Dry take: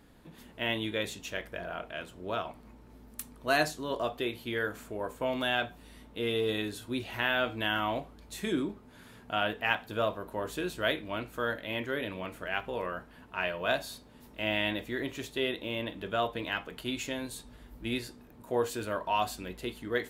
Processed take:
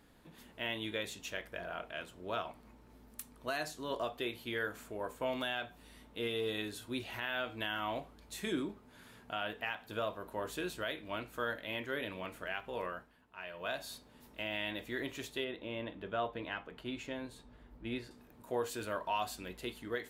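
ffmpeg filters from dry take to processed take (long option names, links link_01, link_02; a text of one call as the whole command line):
ffmpeg -i in.wav -filter_complex "[0:a]asettb=1/sr,asplit=3[link_01][link_02][link_03];[link_01]atrim=end=15.444[link_04];[link_02]atrim=start=15.44:end=18.11,asetpts=PTS-STARTPTS,afade=type=in:duration=0.004:curve=qsin,afade=type=out:start_time=2.666:duration=0.004:curve=qsin,lowpass=frequency=1600:poles=1[link_05];[link_03]atrim=start=18.106[link_06];[link_04][link_05]acrossfade=duration=0.004:curve1=hsin:curve2=qsin[link_07];[link_07][link_06]acrossfade=duration=0.004:curve1=qsin:curve2=hsin,asplit=3[link_08][link_09][link_10];[link_08]atrim=end=13.18,asetpts=PTS-STARTPTS,afade=type=out:start_time=12.84:duration=0.34:silence=0.281838[link_11];[link_09]atrim=start=13.18:end=13.46,asetpts=PTS-STARTPTS,volume=-11dB[link_12];[link_10]atrim=start=13.46,asetpts=PTS-STARTPTS,afade=type=in:duration=0.34:silence=0.281838[link_13];[link_11][link_12][link_13]concat=n=3:v=0:a=1,lowshelf=frequency=490:gain=-4,alimiter=limit=-22dB:level=0:latency=1:release=216,volume=-2.5dB" out.wav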